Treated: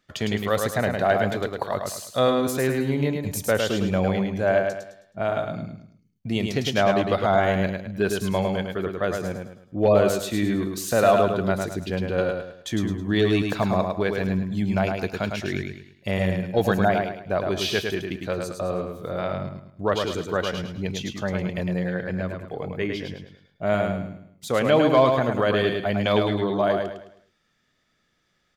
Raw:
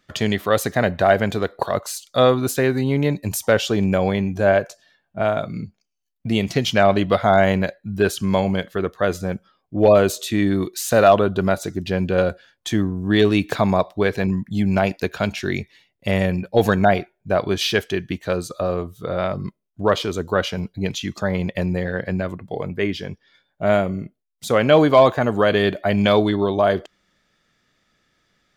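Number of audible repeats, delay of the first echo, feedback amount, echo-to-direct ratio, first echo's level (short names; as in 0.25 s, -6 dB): 4, 0.106 s, 36%, -4.0 dB, -4.5 dB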